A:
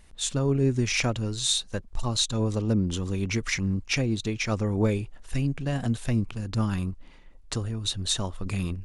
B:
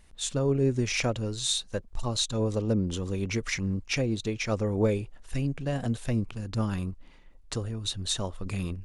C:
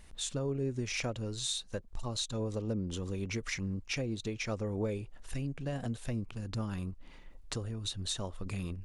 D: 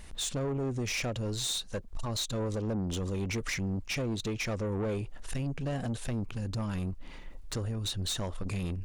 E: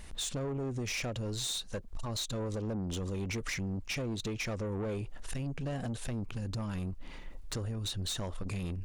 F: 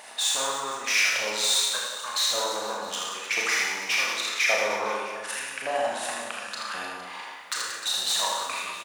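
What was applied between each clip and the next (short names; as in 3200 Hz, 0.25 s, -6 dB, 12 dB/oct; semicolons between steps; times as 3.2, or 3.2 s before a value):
dynamic EQ 510 Hz, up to +6 dB, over -42 dBFS, Q 1.8; gain -3 dB
compressor 2:1, threshold -43 dBFS, peak gain reduction 13 dB; gain +2.5 dB
in parallel at -1 dB: limiter -29.5 dBFS, peak gain reduction 10.5 dB; on the sum: soft clip -30 dBFS, distortion -12 dB; gain +2 dB
compressor, threshold -33 dBFS, peak gain reduction 3.5 dB
LFO high-pass saw up 0.89 Hz 700–1700 Hz; reverse bouncing-ball echo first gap 80 ms, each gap 1.25×, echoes 5; Schroeder reverb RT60 0.65 s, combs from 26 ms, DRR -0.5 dB; gain +8 dB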